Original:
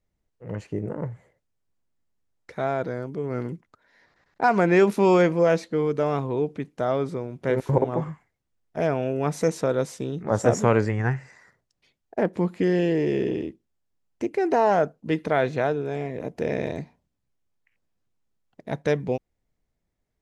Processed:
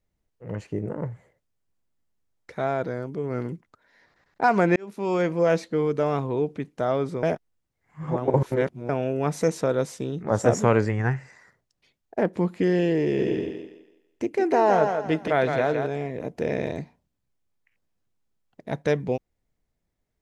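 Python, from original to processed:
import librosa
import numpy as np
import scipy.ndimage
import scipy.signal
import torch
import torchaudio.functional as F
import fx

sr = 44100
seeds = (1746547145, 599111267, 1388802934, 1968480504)

y = fx.echo_thinned(x, sr, ms=165, feedback_pct=34, hz=260.0, wet_db=-5, at=(13.17, 15.86), fade=0.02)
y = fx.edit(y, sr, fx.fade_in_span(start_s=4.76, length_s=0.81),
    fx.reverse_span(start_s=7.23, length_s=1.66), tone=tone)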